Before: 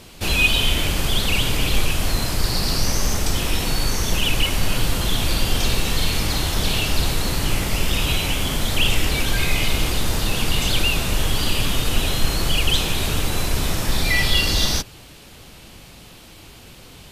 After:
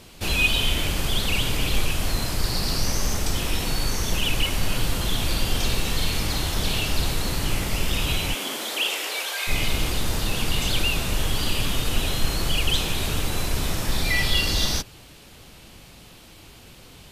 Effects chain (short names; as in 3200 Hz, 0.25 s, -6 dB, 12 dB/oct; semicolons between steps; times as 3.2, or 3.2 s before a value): 8.33–9.47 HPF 230 Hz -> 590 Hz 24 dB/oct; gain -3.5 dB